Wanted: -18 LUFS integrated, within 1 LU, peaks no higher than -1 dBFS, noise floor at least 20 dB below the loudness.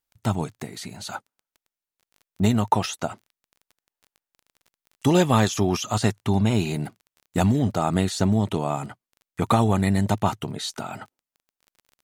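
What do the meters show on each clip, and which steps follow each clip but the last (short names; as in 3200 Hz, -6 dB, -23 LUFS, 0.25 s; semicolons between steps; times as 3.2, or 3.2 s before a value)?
ticks 23/s; loudness -23.5 LUFS; peak -5.5 dBFS; loudness target -18.0 LUFS
-> de-click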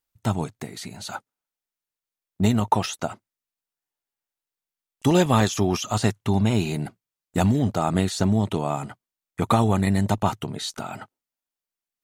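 ticks 0.17/s; loudness -23.5 LUFS; peak -5.5 dBFS; loudness target -18.0 LUFS
-> gain +5.5 dB; limiter -1 dBFS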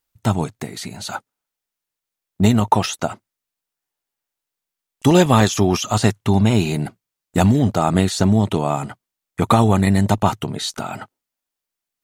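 loudness -18.0 LUFS; peak -1.0 dBFS; noise floor -85 dBFS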